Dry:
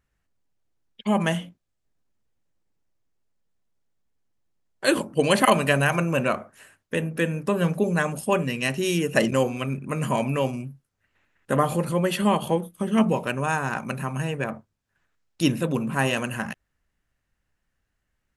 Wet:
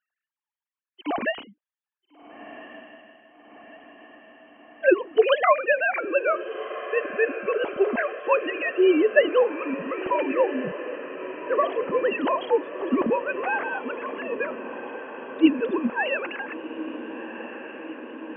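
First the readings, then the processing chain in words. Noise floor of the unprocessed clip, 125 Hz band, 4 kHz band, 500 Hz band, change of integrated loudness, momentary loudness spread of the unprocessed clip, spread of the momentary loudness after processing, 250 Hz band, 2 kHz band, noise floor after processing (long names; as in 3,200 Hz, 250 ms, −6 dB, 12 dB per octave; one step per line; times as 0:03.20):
−78 dBFS, below −20 dB, −5.5 dB, +3.5 dB, 0.0 dB, 9 LU, 16 LU, −2.0 dB, +1.5 dB, below −85 dBFS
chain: three sine waves on the formant tracks
on a send: feedback delay with all-pass diffusion 1,412 ms, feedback 70%, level −12.5 dB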